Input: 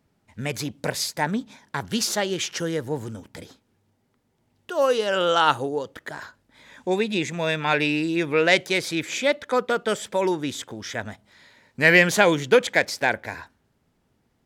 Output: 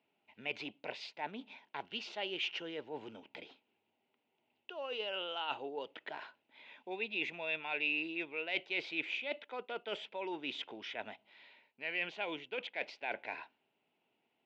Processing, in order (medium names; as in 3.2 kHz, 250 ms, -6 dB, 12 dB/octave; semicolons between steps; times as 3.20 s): reverse; compression 12:1, threshold -28 dBFS, peak gain reduction 18 dB; reverse; cabinet simulation 470–3300 Hz, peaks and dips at 520 Hz -6 dB, 1.2 kHz -10 dB, 1.7 kHz -10 dB, 2.7 kHz +9 dB; trim -3.5 dB